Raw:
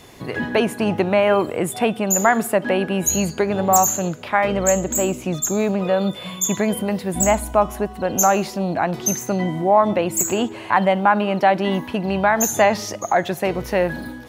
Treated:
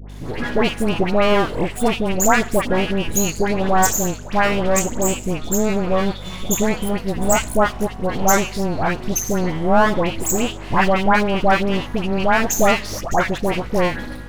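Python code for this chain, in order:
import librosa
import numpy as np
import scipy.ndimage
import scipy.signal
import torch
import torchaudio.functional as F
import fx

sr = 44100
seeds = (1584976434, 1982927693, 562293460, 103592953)

y = scipy.signal.sosfilt(scipy.signal.butter(2, 12000.0, 'lowpass', fs=sr, output='sos'), x)
y = np.maximum(y, 0.0)
y = fx.add_hum(y, sr, base_hz=50, snr_db=17)
y = fx.dispersion(y, sr, late='highs', ms=98.0, hz=1300.0)
y = y * 10.0 ** (4.0 / 20.0)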